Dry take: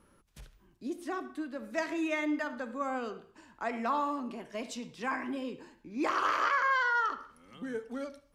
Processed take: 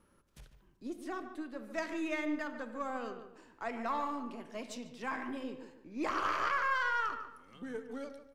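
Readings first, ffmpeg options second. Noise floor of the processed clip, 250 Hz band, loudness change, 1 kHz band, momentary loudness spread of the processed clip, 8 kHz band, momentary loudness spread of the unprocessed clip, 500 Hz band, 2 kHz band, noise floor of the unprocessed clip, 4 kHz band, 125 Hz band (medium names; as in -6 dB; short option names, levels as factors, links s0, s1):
-67 dBFS, -4.0 dB, -4.0 dB, -4.0 dB, 14 LU, -4.0 dB, 15 LU, -4.0 dB, -4.0 dB, -66 dBFS, -3.5 dB, -2.5 dB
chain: -filter_complex "[0:a]aeval=exprs='if(lt(val(0),0),0.708*val(0),val(0))':c=same,asplit=2[s0][s1];[s1]adelay=146,lowpass=f=1800:p=1,volume=0.355,asplit=2[s2][s3];[s3]adelay=146,lowpass=f=1800:p=1,volume=0.34,asplit=2[s4][s5];[s5]adelay=146,lowpass=f=1800:p=1,volume=0.34,asplit=2[s6][s7];[s7]adelay=146,lowpass=f=1800:p=1,volume=0.34[s8];[s0][s2][s4][s6][s8]amix=inputs=5:normalize=0,volume=0.708"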